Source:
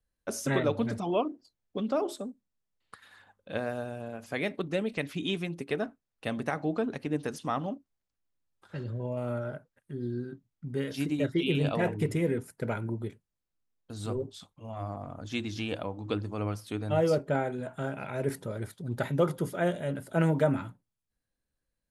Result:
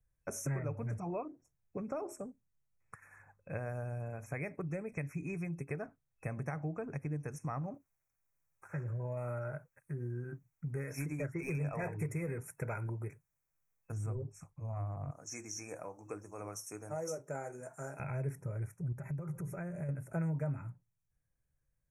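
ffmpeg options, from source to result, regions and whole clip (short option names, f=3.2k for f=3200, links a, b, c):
-filter_complex "[0:a]asettb=1/sr,asplit=3[a][b][c];[a]atrim=end=7.744[d];[b]atrim=start=7.74:end=13.92,asetpts=PTS-STARTPTS,afade=t=in:d=0.004:c=qsin,afade=t=out:st=6.176:d=0.004:c=qsin,asplit=2[e][f];[f]highpass=f=720:p=1,volume=13dB,asoftclip=type=tanh:threshold=-15dB[g];[e][g]amix=inputs=2:normalize=0,lowpass=f=2.3k:p=1,volume=-6dB,aemphasis=mode=production:type=50fm[h];[c]atrim=start=13.916[i];[d][h]acrossfade=d=0.004:c1=hsin:c2=qsin[j];[j][i]acrossfade=d=0.004:c1=qsin:c2=hsin,asettb=1/sr,asplit=3[k][l][m];[k]atrim=end=15.114[n];[l]atrim=start=15.11:end=18,asetpts=PTS-STARTPTS,afade=t=in:d=0.004:c=qsin,afade=t=out:st=2.886:d=0.004:c=qsin,highpass=320,highshelf=f=4.2k:t=q:w=3:g=10.5,flanger=delay=2.3:depth=9.4:regen=-72:speed=1:shape=triangular[o];[m]atrim=start=17.996[p];[n][o]acrossfade=d=0.004:c1=hsin:c2=qsin[q];[q][p]acrossfade=d=0.004:c1=qsin:c2=hsin,asettb=1/sr,asplit=3[r][s][t];[r]atrim=end=18.924[u];[s]atrim=start=18.92:end=19.89,asetpts=PTS-STARTPTS,afade=t=in:d=0.004:c=qsin,afade=t=out:st=0.966:d=0.004:c=qsin,lowshelf=f=140:g=5,aecho=1:1:5.1:0.34,atrim=end_sample=42777,acompressor=threshold=-35dB:ratio=12:attack=3.2:release=140:knee=1:detection=peak[v];[t]atrim=start=19.886[w];[u][v]acrossfade=d=0.004:c1=hsin:c2=qsin[x];[x][w]acrossfade=d=0.004:c1=qsin:c2=hsin,afftfilt=real='re*(1-between(b*sr/4096,2600,5400))':imag='im*(1-between(b*sr/4096,2600,5400))':win_size=4096:overlap=0.75,lowshelf=f=180:t=q:w=3:g=6.5,acompressor=threshold=-35dB:ratio=3,volume=-2.5dB"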